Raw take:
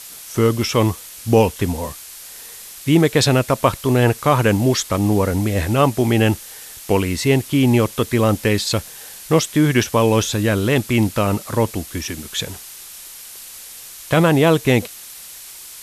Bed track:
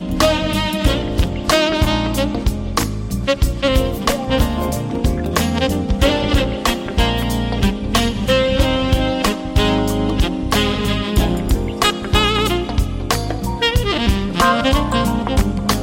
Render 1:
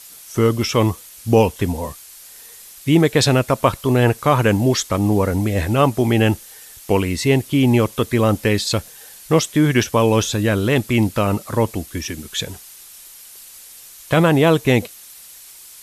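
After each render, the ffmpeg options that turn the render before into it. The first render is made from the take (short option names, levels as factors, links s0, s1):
-af "afftdn=nr=6:nf=-38"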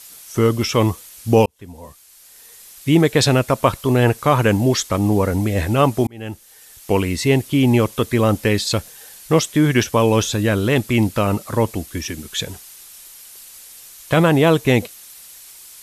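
-filter_complex "[0:a]asplit=3[s0][s1][s2];[s0]atrim=end=1.46,asetpts=PTS-STARTPTS,afade=t=out:st=1.456:d=0.004:c=hsin[s3];[s1]atrim=start=1.46:end=6.07,asetpts=PTS-STARTPTS,afade=t=in:d=1.44,afade=t=out:st=4.606:d=0.004:c=hsin[s4];[s2]atrim=start=6.07,asetpts=PTS-STARTPTS,afade=t=in:d=0.93[s5];[s3][s4][s5]concat=n=3:v=0:a=1"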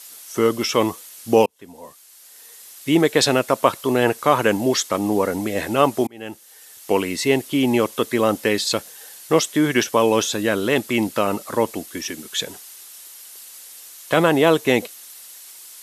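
-af "highpass=260,bandreject=f=2400:w=25"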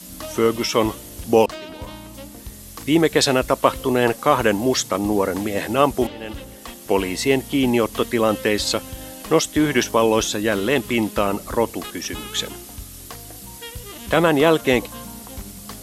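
-filter_complex "[1:a]volume=0.1[s0];[0:a][s0]amix=inputs=2:normalize=0"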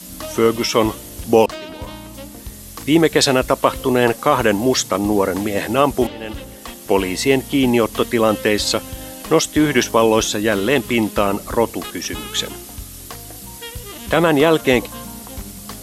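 -af "volume=1.41,alimiter=limit=0.891:level=0:latency=1"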